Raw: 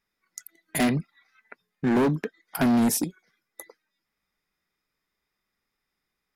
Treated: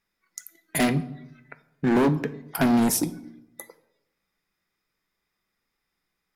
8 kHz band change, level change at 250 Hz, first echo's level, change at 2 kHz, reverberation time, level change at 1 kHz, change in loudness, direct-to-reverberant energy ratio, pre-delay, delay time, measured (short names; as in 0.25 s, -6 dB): +1.5 dB, +1.0 dB, none, +2.0 dB, 0.85 s, +2.0 dB, +1.0 dB, 11.0 dB, 6 ms, none